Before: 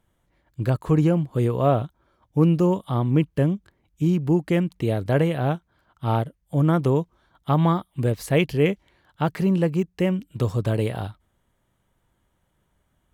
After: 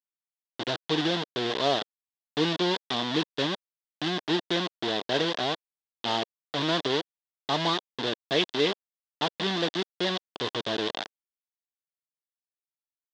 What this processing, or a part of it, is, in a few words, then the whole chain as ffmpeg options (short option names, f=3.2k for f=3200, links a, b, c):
hand-held game console: -af "acrusher=bits=3:mix=0:aa=0.000001,highpass=410,equalizer=f=540:t=q:w=4:g=-7,equalizer=f=840:t=q:w=4:g=-4,equalizer=f=1.3k:t=q:w=4:g=-9,equalizer=f=2.3k:t=q:w=4:g=-9,equalizer=f=3.5k:t=q:w=4:g=9,lowpass=f=4.7k:w=0.5412,lowpass=f=4.7k:w=1.3066"